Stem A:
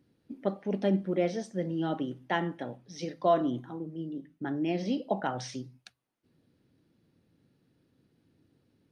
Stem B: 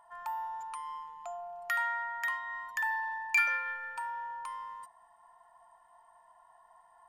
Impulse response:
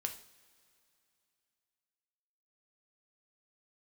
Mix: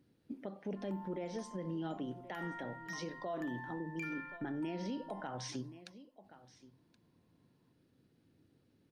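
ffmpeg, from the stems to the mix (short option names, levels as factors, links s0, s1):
-filter_complex "[0:a]alimiter=level_in=1.12:limit=0.0631:level=0:latency=1:release=222,volume=0.891,volume=0.794,asplit=3[s0][s1][s2];[s1]volume=0.1[s3];[1:a]bass=f=250:g=15,treble=f=4000:g=-4,adelay=650,volume=0.237[s4];[s2]apad=whole_len=340898[s5];[s4][s5]sidechaingate=range=0.2:threshold=0.00126:ratio=16:detection=peak[s6];[s3]aecho=0:1:1075:1[s7];[s0][s6][s7]amix=inputs=3:normalize=0,alimiter=level_in=2.51:limit=0.0631:level=0:latency=1:release=89,volume=0.398"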